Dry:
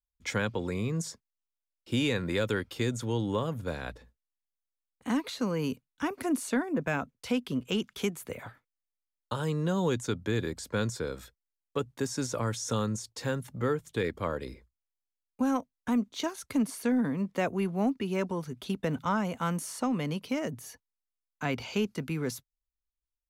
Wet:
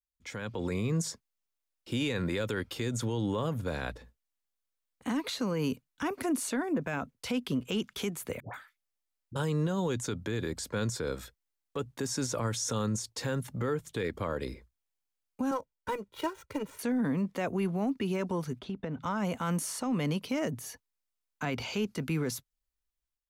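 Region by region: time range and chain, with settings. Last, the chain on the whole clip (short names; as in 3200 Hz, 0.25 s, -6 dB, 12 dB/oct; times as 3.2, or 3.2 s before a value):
8.4–9.36 compressor, threshold -37 dBFS + dispersion highs, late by 0.137 s, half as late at 840 Hz
15.51–16.79 median filter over 9 samples + comb 2.1 ms, depth 99% + upward expander, over -40 dBFS
18.59–19.03 tape spacing loss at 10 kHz 22 dB + compressor 3:1, threshold -37 dBFS
whole clip: limiter -26 dBFS; AGC gain up to 10.5 dB; gain -7.5 dB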